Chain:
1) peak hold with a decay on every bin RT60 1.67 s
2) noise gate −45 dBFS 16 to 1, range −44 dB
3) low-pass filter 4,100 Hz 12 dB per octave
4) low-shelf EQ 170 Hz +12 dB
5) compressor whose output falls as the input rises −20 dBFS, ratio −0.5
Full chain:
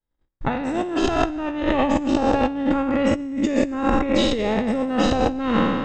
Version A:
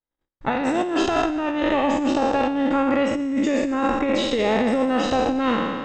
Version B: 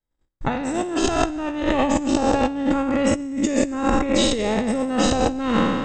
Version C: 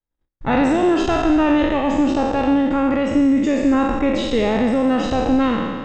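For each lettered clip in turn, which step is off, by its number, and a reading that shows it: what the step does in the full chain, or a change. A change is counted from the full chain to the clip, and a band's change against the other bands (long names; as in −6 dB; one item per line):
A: 4, 125 Hz band −7.0 dB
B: 3, 8 kHz band +10.0 dB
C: 5, change in crest factor −5.5 dB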